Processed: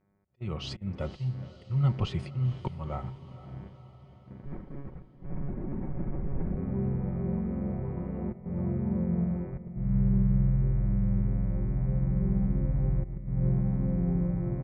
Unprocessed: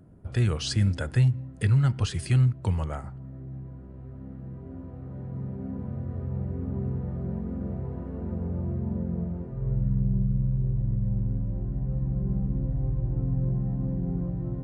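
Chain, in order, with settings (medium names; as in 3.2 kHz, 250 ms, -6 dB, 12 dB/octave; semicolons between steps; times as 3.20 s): Butterworth band-stop 1.6 kHz, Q 2.8; mains buzz 100 Hz, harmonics 24, -48 dBFS -6 dB/octave; low-pass 2.6 kHz 12 dB/octave; slow attack 288 ms; 4.44–6.57 s: monotone LPC vocoder at 8 kHz 140 Hz; comb 5.4 ms, depth 43%; gate -37 dBFS, range -25 dB; echo that smears into a reverb 484 ms, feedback 58%, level -15.5 dB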